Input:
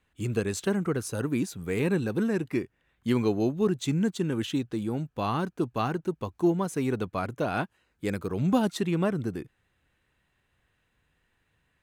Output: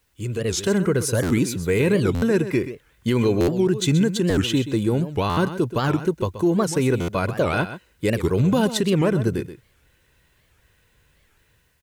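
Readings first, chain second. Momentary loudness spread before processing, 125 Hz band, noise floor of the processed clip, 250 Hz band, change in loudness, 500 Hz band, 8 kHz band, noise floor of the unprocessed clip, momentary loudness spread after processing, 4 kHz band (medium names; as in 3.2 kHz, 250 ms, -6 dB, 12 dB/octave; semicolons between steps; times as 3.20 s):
7 LU, +8.5 dB, -63 dBFS, +6.0 dB, +7.0 dB, +8.0 dB, +10.5 dB, -74 dBFS, 6 LU, +10.5 dB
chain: peaking EQ 970 Hz -4 dB 1.3 oct; comb 2 ms, depth 36%; peak limiter -22 dBFS, peak gain reduction 7.5 dB; level rider gain up to 9 dB; word length cut 12-bit, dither triangular; on a send: delay 128 ms -12 dB; on the sum: buffer glitch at 1.23/2.14/3.40/4.30/5.29/7.00 s, samples 512, times 6; warped record 78 rpm, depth 250 cents; trim +1.5 dB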